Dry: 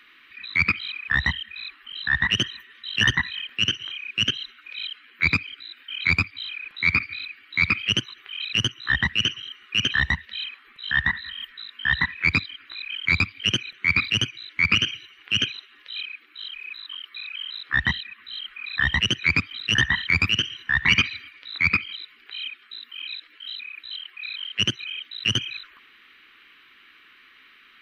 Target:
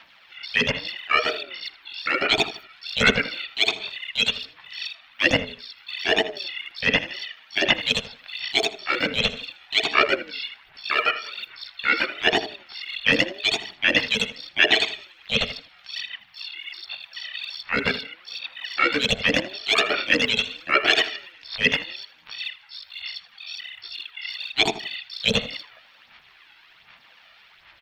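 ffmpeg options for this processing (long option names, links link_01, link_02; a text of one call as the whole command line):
ffmpeg -i in.wav -filter_complex "[0:a]bandreject=frequency=85.12:width_type=h:width=4,bandreject=frequency=170.24:width_type=h:width=4,bandreject=frequency=255.36:width_type=h:width=4,bandreject=frequency=340.48:width_type=h:width=4,bandreject=frequency=425.6:width_type=h:width=4,bandreject=frequency=510.72:width_type=h:width=4,bandreject=frequency=595.84:width_type=h:width=4,bandreject=frequency=680.96:width_type=h:width=4,bandreject=frequency=766.08:width_type=h:width=4,bandreject=frequency=851.2:width_type=h:width=4,bandreject=frequency=936.32:width_type=h:width=4,bandreject=frequency=1021.44:width_type=h:width=4,bandreject=frequency=1106.56:width_type=h:width=4,bandreject=frequency=1191.68:width_type=h:width=4,bandreject=frequency=1276.8:width_type=h:width=4,bandreject=frequency=1361.92:width_type=h:width=4,bandreject=frequency=1447.04:width_type=h:width=4,bandreject=frequency=1532.16:width_type=h:width=4,bandreject=frequency=1617.28:width_type=h:width=4,bandreject=frequency=1702.4:width_type=h:width=4,bandreject=frequency=1787.52:width_type=h:width=4,bandreject=frequency=1872.64:width_type=h:width=4,asplit=2[link_01][link_02];[link_02]asetrate=55563,aresample=44100,atempo=0.793701,volume=-4dB[link_03];[link_01][link_03]amix=inputs=2:normalize=0,aphaser=in_gain=1:out_gain=1:delay=1.7:decay=0.55:speed=1.3:type=sinusoidal,asplit=2[link_04][link_05];[link_05]adelay=80,lowpass=frequency=2600:poles=1,volume=-13.5dB,asplit=2[link_06][link_07];[link_07]adelay=80,lowpass=frequency=2600:poles=1,volume=0.29,asplit=2[link_08][link_09];[link_09]adelay=80,lowpass=frequency=2600:poles=1,volume=0.29[link_10];[link_06][link_08][link_10]amix=inputs=3:normalize=0[link_11];[link_04][link_11]amix=inputs=2:normalize=0,aeval=exprs='val(0)*sin(2*PI*440*n/s+440*0.25/0.81*sin(2*PI*0.81*n/s))':channel_layout=same" out.wav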